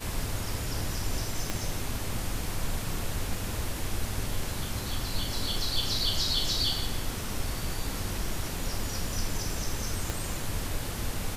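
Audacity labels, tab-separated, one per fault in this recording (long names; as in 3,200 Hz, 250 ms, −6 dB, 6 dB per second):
1.500000	1.500000	click −14 dBFS
10.100000	10.100000	click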